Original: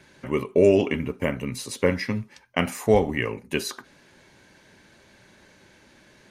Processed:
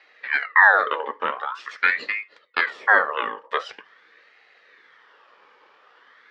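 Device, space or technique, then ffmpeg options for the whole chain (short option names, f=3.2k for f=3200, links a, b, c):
voice changer toy: -af "aeval=exprs='val(0)*sin(2*PI*1500*n/s+1500*0.55/0.45*sin(2*PI*0.45*n/s))':c=same,highpass=450,equalizer=f=460:t=q:w=4:g=7,equalizer=f=680:t=q:w=4:g=-5,equalizer=f=1.2k:t=q:w=4:g=5,equalizer=f=1.8k:t=q:w=4:g=8,equalizer=f=2.6k:t=q:w=4:g=-4,equalizer=f=3.9k:t=q:w=4:g=-3,lowpass=f=4.1k:w=0.5412,lowpass=f=4.1k:w=1.3066,volume=1.5dB"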